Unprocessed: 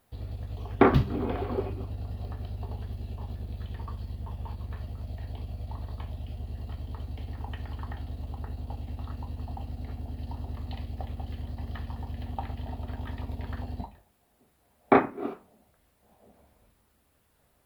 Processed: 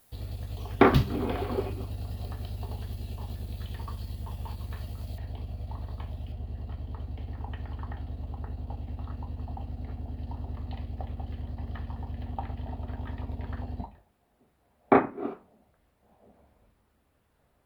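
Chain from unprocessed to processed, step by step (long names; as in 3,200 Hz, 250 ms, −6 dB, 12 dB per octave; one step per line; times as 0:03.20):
high-shelf EQ 3,600 Hz +11.5 dB, from 0:05.18 −2.5 dB, from 0:06.32 −10 dB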